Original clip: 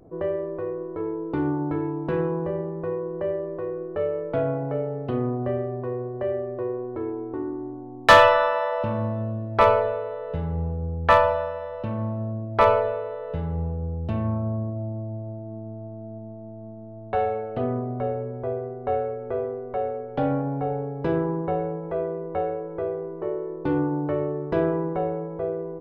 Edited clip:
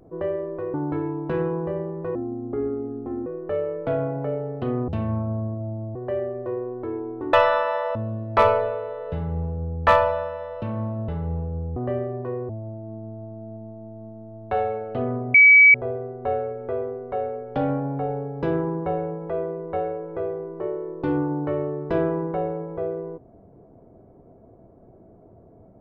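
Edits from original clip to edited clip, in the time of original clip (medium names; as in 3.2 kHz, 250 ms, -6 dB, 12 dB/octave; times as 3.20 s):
0.74–1.53 s: delete
2.94–3.73 s: speed 71%
5.35–6.08 s: swap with 14.04–15.11 s
7.46–8.21 s: delete
8.83–9.17 s: delete
12.30–13.36 s: delete
17.96–18.36 s: bleep 2.28 kHz -8 dBFS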